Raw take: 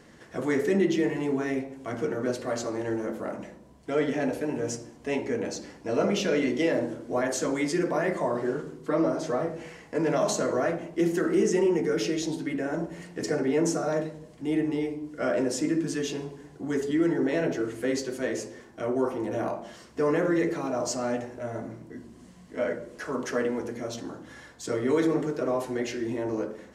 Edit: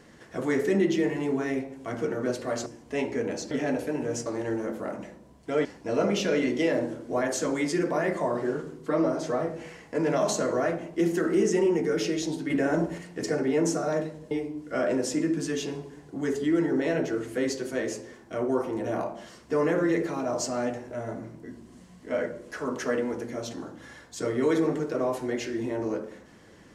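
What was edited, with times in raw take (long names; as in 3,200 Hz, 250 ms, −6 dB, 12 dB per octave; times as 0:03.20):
0:02.66–0:04.05: swap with 0:04.80–0:05.65
0:12.50–0:12.98: clip gain +5 dB
0:14.31–0:14.78: remove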